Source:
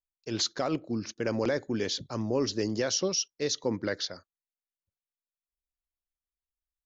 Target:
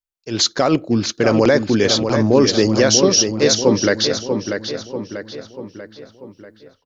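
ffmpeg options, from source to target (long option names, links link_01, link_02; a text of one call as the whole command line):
ffmpeg -i in.wav -filter_complex "[0:a]dynaudnorm=framelen=230:gausssize=3:maxgain=15.5dB,asplit=2[link_01][link_02];[link_02]adelay=640,lowpass=frequency=4000:poles=1,volume=-6.5dB,asplit=2[link_03][link_04];[link_04]adelay=640,lowpass=frequency=4000:poles=1,volume=0.52,asplit=2[link_05][link_06];[link_06]adelay=640,lowpass=frequency=4000:poles=1,volume=0.52,asplit=2[link_07][link_08];[link_08]adelay=640,lowpass=frequency=4000:poles=1,volume=0.52,asplit=2[link_09][link_10];[link_10]adelay=640,lowpass=frequency=4000:poles=1,volume=0.52,asplit=2[link_11][link_12];[link_12]adelay=640,lowpass=frequency=4000:poles=1,volume=0.52[link_13];[link_03][link_05][link_07][link_09][link_11][link_13]amix=inputs=6:normalize=0[link_14];[link_01][link_14]amix=inputs=2:normalize=0" out.wav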